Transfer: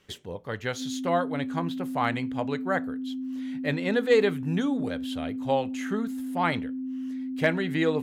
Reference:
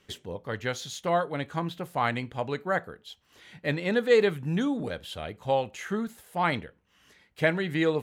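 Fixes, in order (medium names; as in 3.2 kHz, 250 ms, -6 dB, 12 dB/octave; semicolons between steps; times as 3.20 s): clip repair -12 dBFS; band-stop 260 Hz, Q 30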